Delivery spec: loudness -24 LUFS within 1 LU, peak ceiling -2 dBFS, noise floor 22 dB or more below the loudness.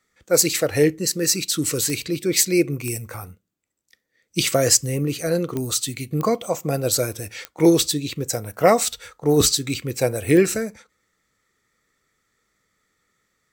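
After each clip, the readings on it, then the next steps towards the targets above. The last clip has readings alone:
clicks 6; loudness -20.5 LUFS; peak -1.5 dBFS; loudness target -24.0 LUFS
-> de-click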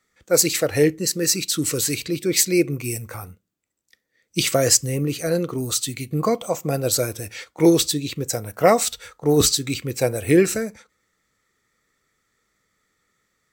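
clicks 0; loudness -20.5 LUFS; peak -1.5 dBFS; loudness target -24.0 LUFS
-> gain -3.5 dB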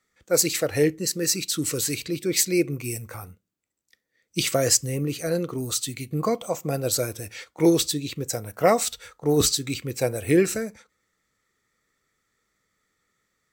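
loudness -24.0 LUFS; peak -5.0 dBFS; noise floor -77 dBFS

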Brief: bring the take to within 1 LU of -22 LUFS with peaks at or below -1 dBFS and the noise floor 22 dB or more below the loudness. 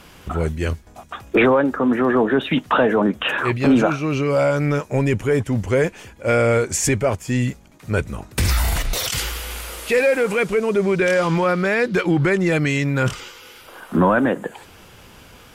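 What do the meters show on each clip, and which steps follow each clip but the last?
loudness -19.5 LUFS; peak -6.5 dBFS; loudness target -22.0 LUFS
-> gain -2.5 dB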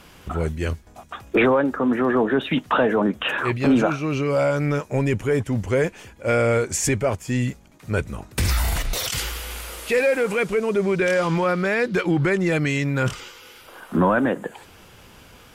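loudness -22.0 LUFS; peak -9.0 dBFS; noise floor -48 dBFS

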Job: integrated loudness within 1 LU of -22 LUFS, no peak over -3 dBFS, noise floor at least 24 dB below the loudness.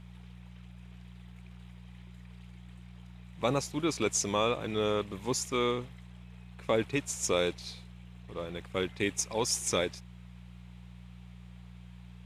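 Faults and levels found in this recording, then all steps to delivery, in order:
hum 60 Hz; harmonics up to 180 Hz; hum level -46 dBFS; loudness -31.5 LUFS; peak -14.0 dBFS; loudness target -22.0 LUFS
-> de-hum 60 Hz, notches 3; gain +9.5 dB

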